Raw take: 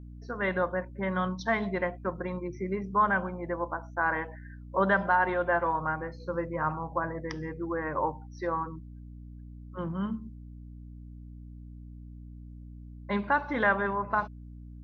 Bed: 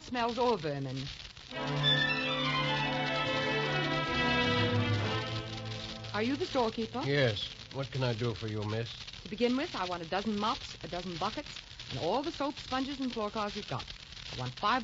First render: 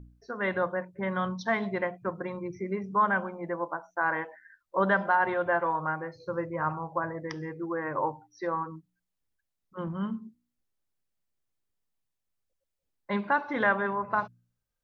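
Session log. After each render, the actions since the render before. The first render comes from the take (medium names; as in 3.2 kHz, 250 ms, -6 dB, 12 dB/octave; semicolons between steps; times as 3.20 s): de-hum 60 Hz, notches 5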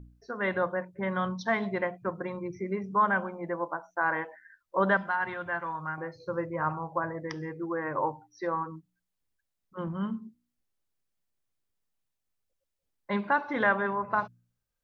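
4.97–5.98 s: peaking EQ 520 Hz -12 dB 1.8 oct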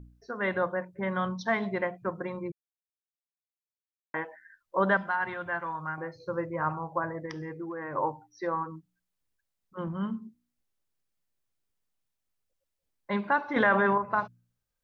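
2.52–4.14 s: mute; 7.25–7.93 s: compression, threshold -33 dBFS; 13.56–13.98 s: level flattener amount 70%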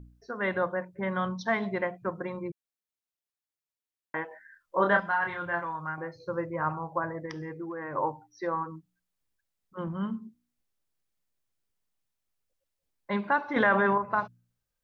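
4.28–5.65 s: doubling 29 ms -3.5 dB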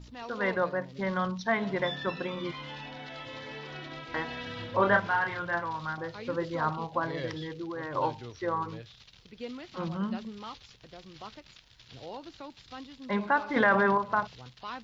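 add bed -10.5 dB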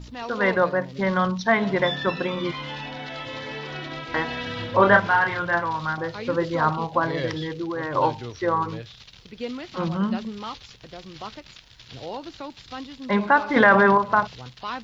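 trim +8 dB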